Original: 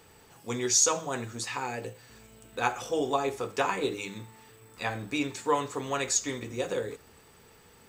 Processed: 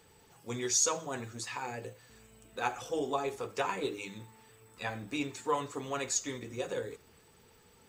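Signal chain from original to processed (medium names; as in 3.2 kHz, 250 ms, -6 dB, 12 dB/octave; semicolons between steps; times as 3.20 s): coarse spectral quantiser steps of 15 dB; trim -4.5 dB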